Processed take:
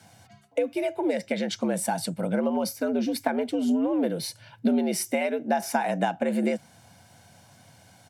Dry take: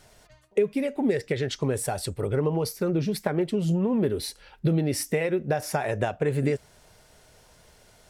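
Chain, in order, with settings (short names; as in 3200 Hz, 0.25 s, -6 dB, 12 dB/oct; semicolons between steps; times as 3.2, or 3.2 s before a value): comb 1.4 ms, depth 40%; frequency shift +80 Hz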